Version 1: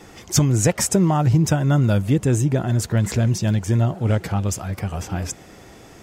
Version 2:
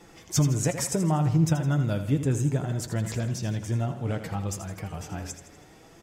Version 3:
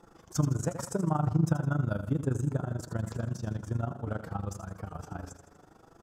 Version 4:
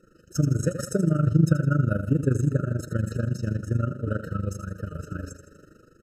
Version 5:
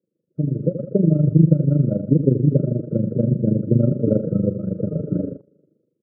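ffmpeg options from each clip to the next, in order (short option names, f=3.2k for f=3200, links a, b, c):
-filter_complex "[0:a]flanger=delay=5.8:depth=1.5:regen=54:speed=0.66:shape=triangular,asplit=2[a][b];[b]aecho=0:1:81|162|243|324|405:0.299|0.149|0.0746|0.0373|0.0187[c];[a][c]amix=inputs=2:normalize=0,volume=-4dB"
-af "highshelf=f=1.7k:t=q:w=3:g=-6.5,tremolo=f=25:d=0.824,volume=-1.5dB"
-af "dynaudnorm=f=160:g=5:m=7dB,afftfilt=real='re*eq(mod(floor(b*sr/1024/620),2),0)':imag='im*eq(mod(floor(b*sr/1024/620),2),0)':win_size=1024:overlap=0.75"
-af "asuperpass=centerf=290:order=8:qfactor=0.56,agate=range=-18dB:threshold=-46dB:ratio=16:detection=peak,dynaudnorm=f=140:g=9:m=16dB,volume=-1dB"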